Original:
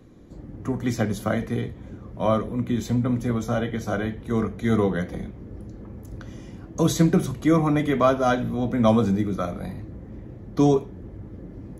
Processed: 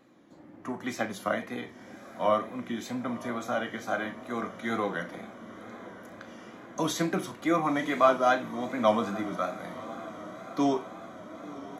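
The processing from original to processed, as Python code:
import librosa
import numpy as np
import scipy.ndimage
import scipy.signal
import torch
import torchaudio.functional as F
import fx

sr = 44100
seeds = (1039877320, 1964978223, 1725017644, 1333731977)

y = scipy.signal.sosfilt(scipy.signal.butter(2, 160.0, 'highpass', fs=sr, output='sos'), x)
y = fx.bass_treble(y, sr, bass_db=-15, treble_db=-6)
y = fx.doubler(y, sr, ms=38.0, db=-12.5)
y = fx.echo_diffused(y, sr, ms=1002, feedback_pct=69, wet_db=-16)
y = fx.wow_flutter(y, sr, seeds[0], rate_hz=2.1, depth_cents=60.0)
y = fx.peak_eq(y, sr, hz=440.0, db=-10.5, octaves=0.47)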